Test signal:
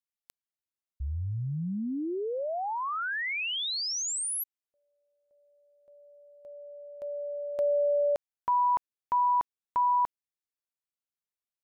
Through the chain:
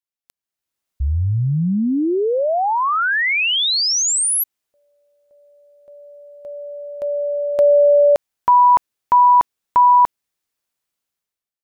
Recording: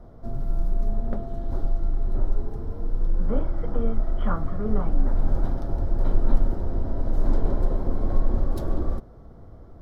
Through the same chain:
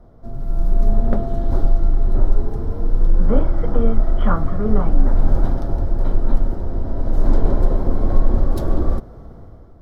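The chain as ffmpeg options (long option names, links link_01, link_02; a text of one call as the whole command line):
ffmpeg -i in.wav -af "dynaudnorm=framelen=180:gausssize=7:maxgain=15dB,volume=-1dB" out.wav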